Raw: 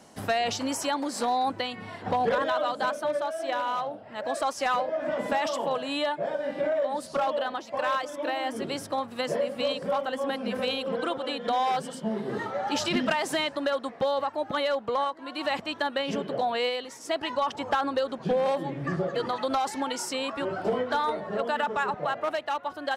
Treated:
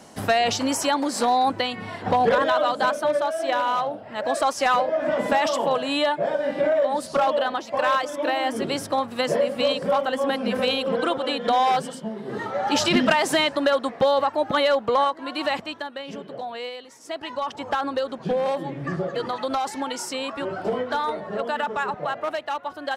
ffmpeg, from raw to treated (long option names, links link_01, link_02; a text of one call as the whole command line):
ffmpeg -i in.wav -af "volume=24dB,afade=type=out:start_time=11.75:duration=0.4:silence=0.316228,afade=type=in:start_time=12.15:duration=0.64:silence=0.281838,afade=type=out:start_time=15.24:duration=0.63:silence=0.237137,afade=type=in:start_time=16.87:duration=0.99:silence=0.446684" out.wav